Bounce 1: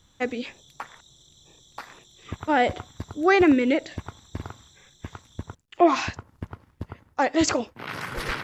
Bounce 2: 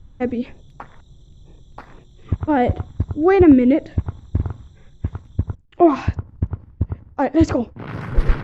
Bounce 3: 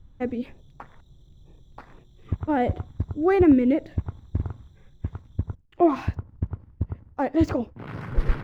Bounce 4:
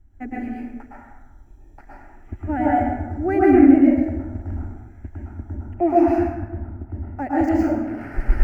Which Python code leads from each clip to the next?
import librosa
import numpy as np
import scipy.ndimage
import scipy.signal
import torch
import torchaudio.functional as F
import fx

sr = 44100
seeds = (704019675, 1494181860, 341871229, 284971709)

y1 = fx.tilt_eq(x, sr, slope=-4.5)
y2 = scipy.ndimage.median_filter(y1, 5, mode='constant')
y2 = y2 * librosa.db_to_amplitude(-6.0)
y3 = fx.fixed_phaser(y2, sr, hz=730.0, stages=8)
y3 = fx.rev_plate(y3, sr, seeds[0], rt60_s=1.2, hf_ratio=0.55, predelay_ms=100, drr_db=-6.0)
y3 = y3 * librosa.db_to_amplitude(-1.0)